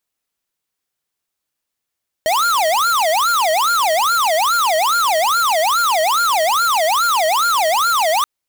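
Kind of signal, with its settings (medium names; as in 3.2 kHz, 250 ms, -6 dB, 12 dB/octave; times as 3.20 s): siren wail 622–1410 Hz 2.4 per s square -15.5 dBFS 5.98 s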